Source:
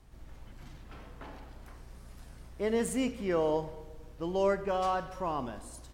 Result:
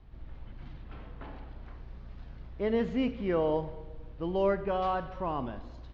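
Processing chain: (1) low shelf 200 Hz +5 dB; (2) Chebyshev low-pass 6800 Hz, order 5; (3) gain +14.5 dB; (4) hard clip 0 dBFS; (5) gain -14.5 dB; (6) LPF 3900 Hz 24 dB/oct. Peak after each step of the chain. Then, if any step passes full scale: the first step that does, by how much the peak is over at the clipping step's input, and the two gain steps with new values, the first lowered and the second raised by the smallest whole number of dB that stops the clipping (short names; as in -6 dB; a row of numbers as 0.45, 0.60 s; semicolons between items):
-16.5, -17.0, -2.5, -2.5, -17.0, -17.0 dBFS; no overload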